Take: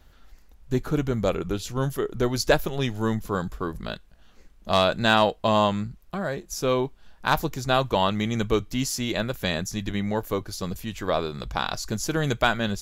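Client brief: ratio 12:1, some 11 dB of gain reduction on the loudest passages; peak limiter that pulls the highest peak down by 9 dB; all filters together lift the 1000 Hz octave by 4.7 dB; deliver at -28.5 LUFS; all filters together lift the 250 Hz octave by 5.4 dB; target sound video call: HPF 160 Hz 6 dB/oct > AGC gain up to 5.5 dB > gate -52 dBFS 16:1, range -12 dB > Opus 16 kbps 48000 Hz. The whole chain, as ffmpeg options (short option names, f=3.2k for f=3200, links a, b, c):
-af "equalizer=f=250:t=o:g=8.5,equalizer=f=1k:t=o:g=5.5,acompressor=threshold=-22dB:ratio=12,alimiter=limit=-17.5dB:level=0:latency=1,highpass=f=160:p=1,dynaudnorm=m=5.5dB,agate=range=-12dB:threshold=-52dB:ratio=16,volume=3.5dB" -ar 48000 -c:a libopus -b:a 16k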